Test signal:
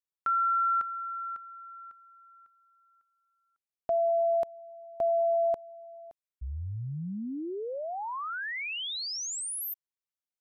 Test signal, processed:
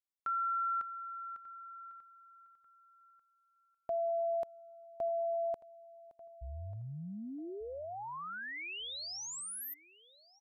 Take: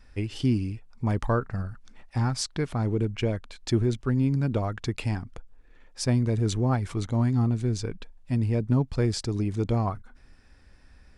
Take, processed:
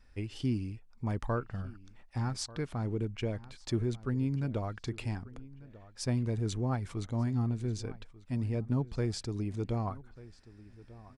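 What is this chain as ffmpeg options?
ffmpeg -i in.wav -filter_complex "[0:a]asplit=2[link_01][link_02];[link_02]adelay=1191,lowpass=frequency=4000:poles=1,volume=-19dB,asplit=2[link_03][link_04];[link_04]adelay=1191,lowpass=frequency=4000:poles=1,volume=0.29[link_05];[link_01][link_03][link_05]amix=inputs=3:normalize=0,volume=-7.5dB" out.wav

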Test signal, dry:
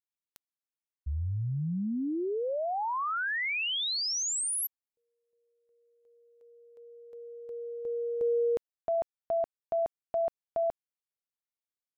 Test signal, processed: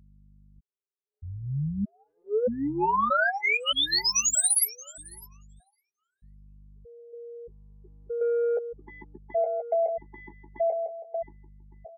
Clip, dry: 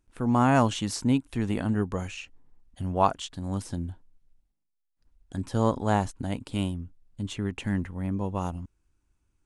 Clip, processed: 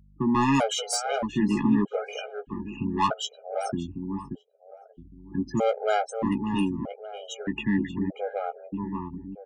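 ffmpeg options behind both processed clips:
ffmpeg -i in.wav -filter_complex "[0:a]highpass=frequency=130:width=0.5412,highpass=frequency=130:width=1.3066,afftfilt=real='re*gte(hypot(re,im),0.0158)':imag='im*gte(hypot(re,im),0.0158)':win_size=1024:overlap=0.75,highshelf=frequency=8700:gain=8,acrossover=split=220|850[link_01][link_02][link_03];[link_01]acompressor=threshold=-40dB:ratio=12:attack=71:release=167:knee=1:detection=rms[link_04];[link_04][link_02][link_03]amix=inputs=3:normalize=0,asoftclip=type=tanh:threshold=-21dB,aeval=exprs='val(0)+0.000891*(sin(2*PI*50*n/s)+sin(2*PI*2*50*n/s)/2+sin(2*PI*3*50*n/s)/3+sin(2*PI*4*50*n/s)/4+sin(2*PI*5*50*n/s)/5)':channel_layout=same,asplit=2[link_05][link_06];[link_06]adelay=14,volume=-7dB[link_07];[link_05][link_07]amix=inputs=2:normalize=0,asplit=2[link_08][link_09];[link_09]adelay=581,lowpass=frequency=1000:poles=1,volume=-4.5dB,asplit=2[link_10][link_11];[link_11]adelay=581,lowpass=frequency=1000:poles=1,volume=0.41,asplit=2[link_12][link_13];[link_13]adelay=581,lowpass=frequency=1000:poles=1,volume=0.41,asplit=2[link_14][link_15];[link_15]adelay=581,lowpass=frequency=1000:poles=1,volume=0.41,asplit=2[link_16][link_17];[link_17]adelay=581,lowpass=frequency=1000:poles=1,volume=0.41[link_18];[link_10][link_12][link_14][link_16][link_18]amix=inputs=5:normalize=0[link_19];[link_08][link_19]amix=inputs=2:normalize=0,afftfilt=real='re*gt(sin(2*PI*0.8*pts/sr)*(1-2*mod(floor(b*sr/1024/410),2)),0)':imag='im*gt(sin(2*PI*0.8*pts/sr)*(1-2*mod(floor(b*sr/1024/410),2)),0)':win_size=1024:overlap=0.75,volume=7dB" out.wav

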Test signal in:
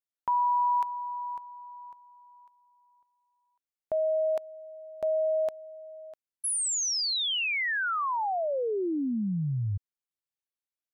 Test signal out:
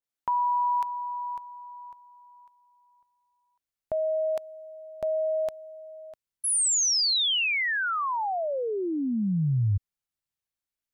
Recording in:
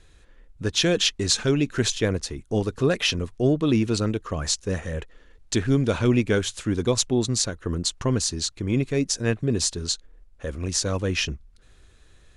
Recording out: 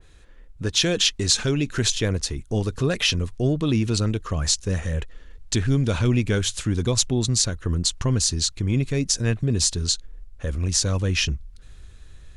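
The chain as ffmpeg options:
ffmpeg -i in.wav -filter_complex "[0:a]asubboost=boost=2:cutoff=200,asplit=2[link_01][link_02];[link_02]acompressor=threshold=-29dB:ratio=6:attack=37:release=39:knee=6:detection=rms,volume=3dB[link_03];[link_01][link_03]amix=inputs=2:normalize=0,adynamicequalizer=threshold=0.0178:dfrequency=2500:dqfactor=0.7:tfrequency=2500:tqfactor=0.7:attack=5:release=100:ratio=0.375:range=2:mode=boostabove:tftype=highshelf,volume=-5.5dB" out.wav

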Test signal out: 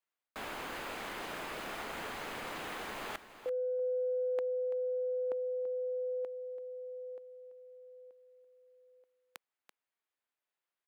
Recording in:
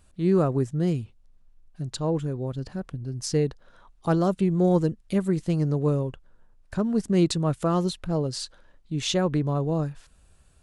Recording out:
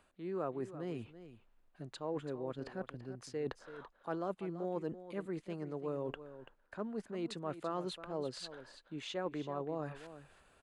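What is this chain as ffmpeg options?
ffmpeg -i in.wav -filter_complex "[0:a]lowshelf=frequency=410:gain=-6,areverse,acompressor=threshold=-39dB:ratio=8,areverse,aeval=exprs='0.211*(cos(1*acos(clip(val(0)/0.211,-1,1)))-cos(1*PI/2))+0.00841*(cos(7*acos(clip(val(0)/0.211,-1,1)))-cos(7*PI/2))':channel_layout=same,acrossover=split=230 3000:gain=0.2 1 0.2[link_01][link_02][link_03];[link_01][link_02][link_03]amix=inputs=3:normalize=0,bandreject=frequency=5600:width=15,asplit=2[link_04][link_05];[link_05]aecho=0:1:335:0.224[link_06];[link_04][link_06]amix=inputs=2:normalize=0,volume=7.5dB" out.wav

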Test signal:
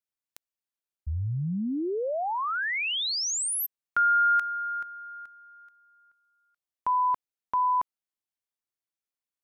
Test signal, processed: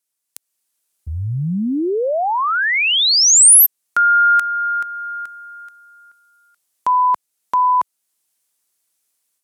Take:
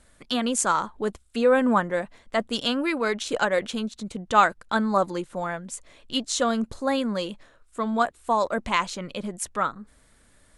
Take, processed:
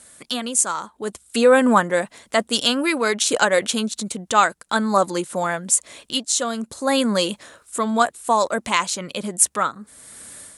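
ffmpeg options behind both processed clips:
ffmpeg -i in.wav -filter_complex "[0:a]highpass=77,lowshelf=frequency=100:gain=-8.5,asplit=2[link_01][link_02];[link_02]acompressor=threshold=-37dB:ratio=6:attack=0.97:release=352:knee=6:detection=rms,volume=2dB[link_03];[link_01][link_03]amix=inputs=2:normalize=0,equalizer=frequency=9900:width_type=o:width=1.6:gain=13,dynaudnorm=framelen=260:gausssize=3:maxgain=8.5dB,volume=-1dB" out.wav

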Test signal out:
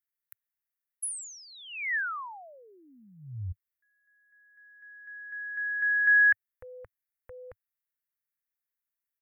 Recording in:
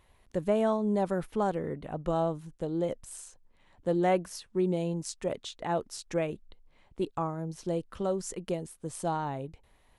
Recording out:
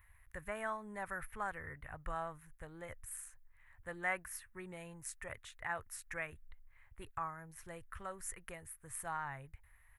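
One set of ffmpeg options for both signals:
ffmpeg -i in.wav -af "firequalizer=gain_entry='entry(100,0);entry(170,-21);entry(330,-24);entry(1100,-4);entry(1800,6);entry(3100,-13);entry(4600,-18);entry(12000,7)':delay=0.05:min_phase=1" out.wav

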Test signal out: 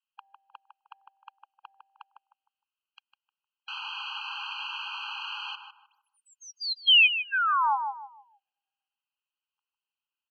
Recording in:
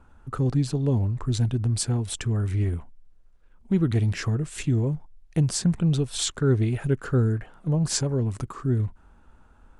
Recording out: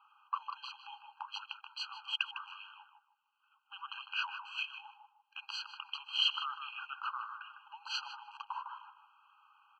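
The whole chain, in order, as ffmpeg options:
ffmpeg -i in.wav -filter_complex "[0:a]aexciter=amount=3.9:drive=1.9:freq=2600,highpass=frequency=240:width_type=q:width=0.5412,highpass=frequency=240:width_type=q:width=1.307,lowpass=frequency=3500:width_type=q:width=0.5176,lowpass=frequency=3500:width_type=q:width=0.7071,lowpass=frequency=3500:width_type=q:width=1.932,afreqshift=-170,asplit=2[link_01][link_02];[link_02]adelay=154,lowpass=frequency=1300:poles=1,volume=-4.5dB,asplit=2[link_03][link_04];[link_04]adelay=154,lowpass=frequency=1300:poles=1,volume=0.35,asplit=2[link_05][link_06];[link_06]adelay=154,lowpass=frequency=1300:poles=1,volume=0.35,asplit=2[link_07][link_08];[link_08]adelay=154,lowpass=frequency=1300:poles=1,volume=0.35[link_09];[link_01][link_03][link_05][link_07][link_09]amix=inputs=5:normalize=0,afftfilt=real='re*eq(mod(floor(b*sr/1024/810),2),1)':imag='im*eq(mod(floor(b*sr/1024/810),2),1)':win_size=1024:overlap=0.75" out.wav

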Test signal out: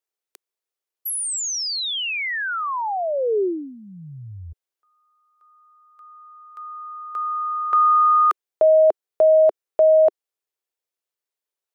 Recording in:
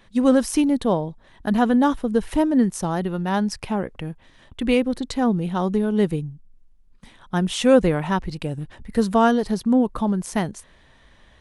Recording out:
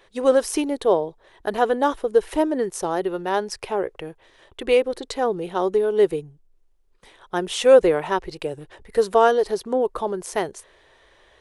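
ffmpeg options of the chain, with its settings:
ffmpeg -i in.wav -af "lowshelf=frequency=300:width_type=q:width=3:gain=-9" out.wav

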